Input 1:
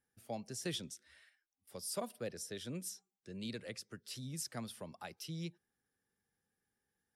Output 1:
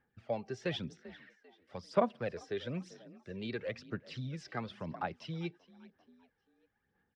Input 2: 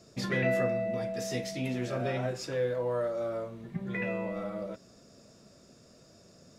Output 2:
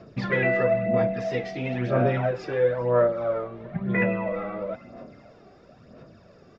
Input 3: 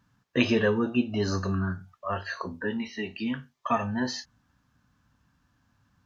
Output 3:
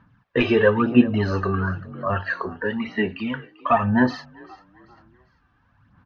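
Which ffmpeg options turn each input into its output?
-filter_complex "[0:a]asplit=2[a][b];[b]asplit=3[c][d][e];[c]adelay=393,afreqshift=42,volume=-20.5dB[f];[d]adelay=786,afreqshift=84,volume=-28.2dB[g];[e]adelay=1179,afreqshift=126,volume=-36dB[h];[f][g][h]amix=inputs=3:normalize=0[i];[a][i]amix=inputs=2:normalize=0,asplit=2[j][k];[k]highpass=f=720:p=1,volume=11dB,asoftclip=type=tanh:threshold=-7.5dB[l];[j][l]amix=inputs=2:normalize=0,lowpass=f=2.3k:p=1,volume=-6dB,lowpass=f=6.4k:w=0.5412,lowpass=f=6.4k:w=1.3066,aphaser=in_gain=1:out_gain=1:delay=2.6:decay=0.51:speed=1:type=sinusoidal,bass=f=250:g=7,treble=f=4k:g=-14,volume=2.5dB"

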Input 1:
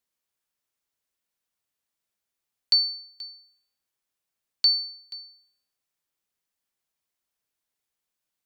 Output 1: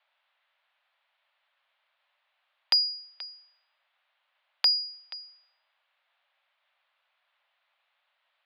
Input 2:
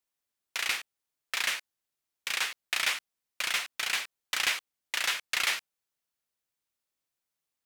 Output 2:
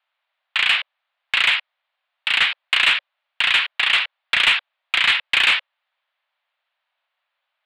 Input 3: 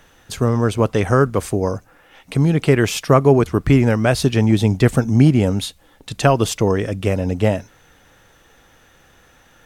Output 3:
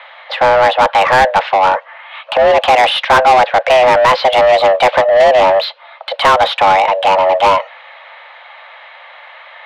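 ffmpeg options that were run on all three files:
-filter_complex "[0:a]highpass=f=160:t=q:w=0.5412,highpass=f=160:t=q:w=1.307,lowpass=f=3.4k:t=q:w=0.5176,lowpass=f=3.4k:t=q:w=0.7071,lowpass=f=3.4k:t=q:w=1.932,afreqshift=380,asplit=2[a][b];[b]highpass=f=720:p=1,volume=25dB,asoftclip=type=tanh:threshold=-1dB[c];[a][c]amix=inputs=2:normalize=0,lowpass=f=2.9k:p=1,volume=-6dB"

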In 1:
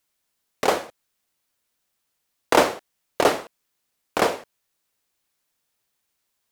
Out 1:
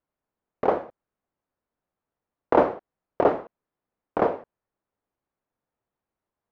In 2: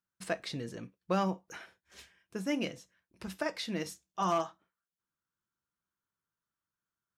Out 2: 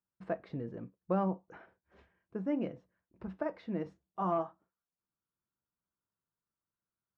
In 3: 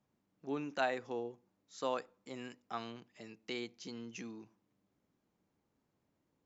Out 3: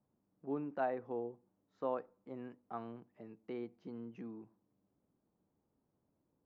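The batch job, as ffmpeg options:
-af "lowpass=1k"

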